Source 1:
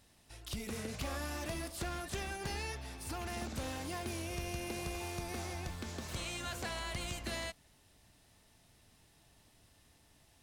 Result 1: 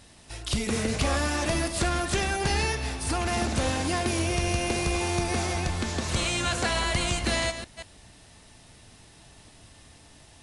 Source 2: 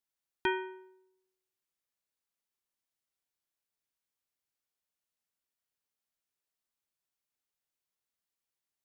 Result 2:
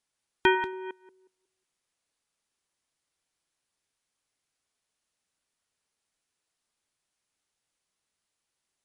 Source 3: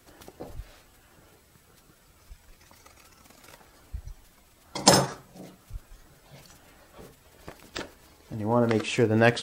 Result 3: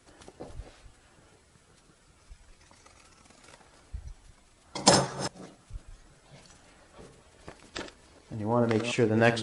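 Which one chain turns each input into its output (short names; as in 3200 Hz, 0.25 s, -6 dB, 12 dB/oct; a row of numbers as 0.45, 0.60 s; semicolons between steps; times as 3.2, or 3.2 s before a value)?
reverse delay 0.182 s, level -10.5 dB; MP3 64 kbps 24000 Hz; match loudness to -27 LUFS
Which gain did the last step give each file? +13.5, +9.0, -2.0 dB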